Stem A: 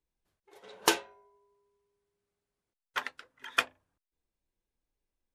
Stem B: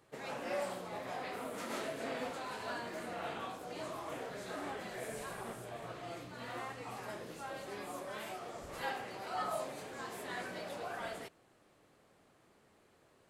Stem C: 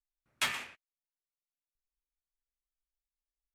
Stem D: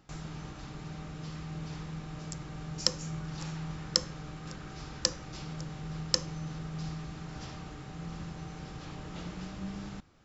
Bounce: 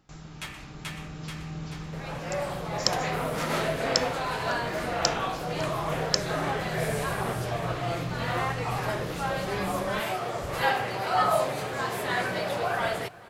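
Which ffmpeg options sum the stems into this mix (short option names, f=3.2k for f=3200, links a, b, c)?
-filter_complex "[0:a]adelay=2050,volume=-18.5dB[a];[1:a]equalizer=f=125:t=o:w=1:g=7,equalizer=f=250:t=o:w=1:g=-6,equalizer=f=8k:t=o:w=1:g=-5,dynaudnorm=f=130:g=13:m=10dB,adelay=1800,volume=-1.5dB,asplit=2[b][c];[c]volume=-22.5dB[d];[2:a]volume=-8.5dB,asplit=2[e][f];[f]volume=-3.5dB[g];[3:a]volume=-3dB[h];[d][g]amix=inputs=2:normalize=0,aecho=0:1:433|866|1299|1732|2165|2598|3031:1|0.49|0.24|0.118|0.0576|0.0282|0.0138[i];[a][b][e][h][i]amix=inputs=5:normalize=0,dynaudnorm=f=140:g=11:m=6dB"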